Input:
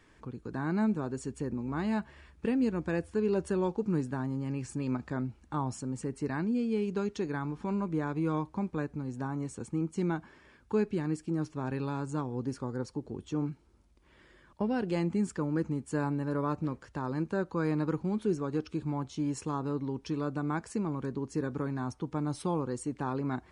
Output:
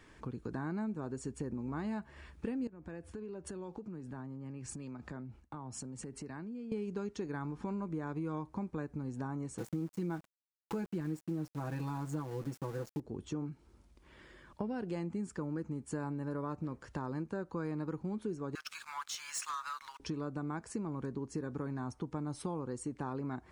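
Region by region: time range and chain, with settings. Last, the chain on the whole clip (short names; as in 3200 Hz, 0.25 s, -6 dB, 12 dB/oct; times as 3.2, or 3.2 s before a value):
2.67–6.72 gate with hold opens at -42 dBFS, closes at -47 dBFS + compressor 20:1, threshold -42 dBFS + three-band expander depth 40%
9.58–13 comb 6.1 ms, depth 84% + sample gate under -42 dBFS
18.55–20 steep high-pass 1200 Hz + sample leveller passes 3
whole clip: dynamic EQ 3300 Hz, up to -4 dB, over -58 dBFS, Q 1.1; compressor 4:1, threshold -39 dBFS; gain +2.5 dB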